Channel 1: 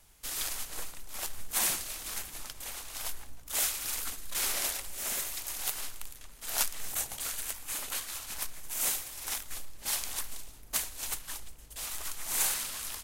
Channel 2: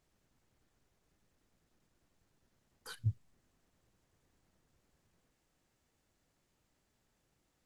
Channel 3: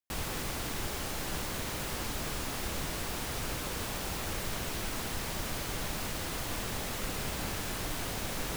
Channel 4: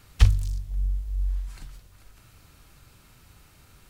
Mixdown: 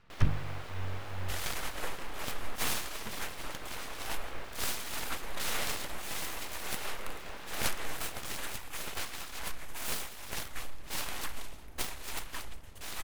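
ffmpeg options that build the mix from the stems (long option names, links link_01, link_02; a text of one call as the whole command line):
ffmpeg -i stem1.wav -i stem2.wav -i stem3.wav -i stem4.wav -filter_complex "[0:a]acontrast=55,adelay=1050,volume=1dB[link_01];[1:a]volume=-5.5dB[link_02];[2:a]bass=frequency=250:gain=-13,treble=frequency=4000:gain=-4,volume=-3.5dB[link_03];[3:a]lowpass=3800,volume=-4.5dB[link_04];[link_01][link_02][link_03][link_04]amix=inputs=4:normalize=0,bass=frequency=250:gain=-3,treble=frequency=4000:gain=-14,aeval=exprs='abs(val(0))':channel_layout=same" out.wav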